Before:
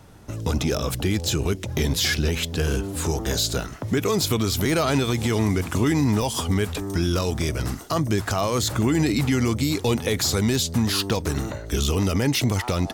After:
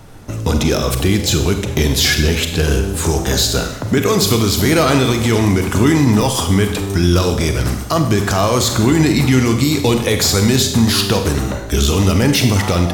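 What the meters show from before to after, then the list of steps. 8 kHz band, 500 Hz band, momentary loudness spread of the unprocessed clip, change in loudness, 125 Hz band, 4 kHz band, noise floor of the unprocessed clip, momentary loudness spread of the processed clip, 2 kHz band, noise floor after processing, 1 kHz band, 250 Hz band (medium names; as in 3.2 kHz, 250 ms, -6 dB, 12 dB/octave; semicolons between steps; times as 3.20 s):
+8.5 dB, +8.5 dB, 5 LU, +8.5 dB, +8.5 dB, +8.5 dB, -36 dBFS, 5 LU, +8.5 dB, -24 dBFS, +8.5 dB, +8.5 dB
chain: added noise brown -54 dBFS; Schroeder reverb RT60 0.85 s, combs from 31 ms, DRR 5.5 dB; trim +7.5 dB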